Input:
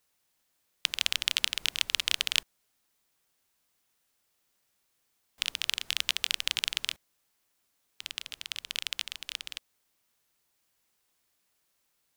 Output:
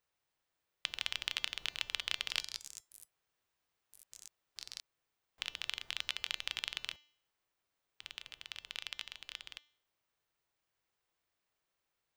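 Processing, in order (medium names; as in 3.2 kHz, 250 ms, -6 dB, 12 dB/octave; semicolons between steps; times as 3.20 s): peaking EQ 14 kHz -14 dB 1.9 oct; de-hum 296.8 Hz, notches 25; 1.98–5.74 s: ever faster or slower copies 311 ms, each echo +7 st, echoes 3, each echo -6 dB; peaking EQ 230 Hz -7 dB 0.66 oct; trim -4.5 dB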